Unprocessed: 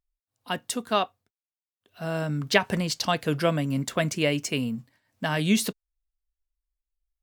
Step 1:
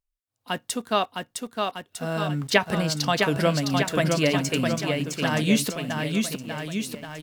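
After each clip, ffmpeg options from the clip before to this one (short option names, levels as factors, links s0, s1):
-filter_complex "[0:a]aecho=1:1:660|1254|1789|2270|2703:0.631|0.398|0.251|0.158|0.1,asplit=2[s0][s1];[s1]aeval=exprs='val(0)*gte(abs(val(0)),0.0126)':c=same,volume=0.501[s2];[s0][s2]amix=inputs=2:normalize=0,volume=0.75"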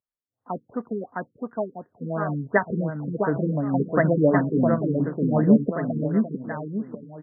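-af "dynaudnorm=f=270:g=9:m=3.76,highpass=130,lowpass=6400,afftfilt=real='re*lt(b*sr/1024,460*pow(2100/460,0.5+0.5*sin(2*PI*2.8*pts/sr)))':imag='im*lt(b*sr/1024,460*pow(2100/460,0.5+0.5*sin(2*PI*2.8*pts/sr)))':win_size=1024:overlap=0.75"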